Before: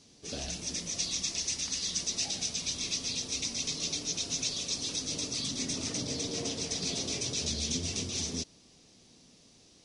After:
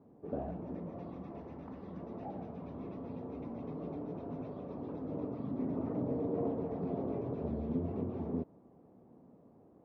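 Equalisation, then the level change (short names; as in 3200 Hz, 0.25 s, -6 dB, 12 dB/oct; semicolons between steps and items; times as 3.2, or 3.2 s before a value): HPF 51 Hz; LPF 1000 Hz 24 dB/oct; low shelf 95 Hz -11.5 dB; +5.0 dB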